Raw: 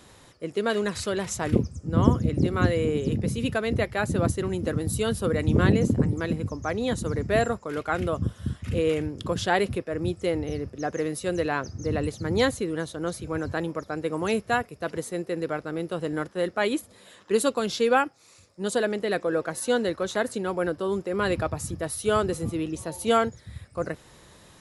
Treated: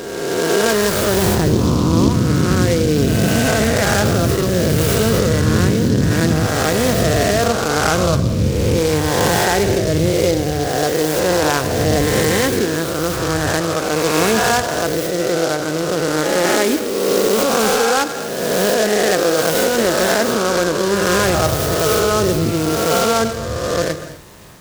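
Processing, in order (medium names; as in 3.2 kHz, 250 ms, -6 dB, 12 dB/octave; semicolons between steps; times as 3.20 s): reverse spectral sustain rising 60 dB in 2.00 s; in parallel at +0.5 dB: compressor with a negative ratio -22 dBFS, ratio -0.5; on the sum: gated-style reverb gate 280 ms flat, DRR 9 dB; delay time shaken by noise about 4.6 kHz, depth 0.063 ms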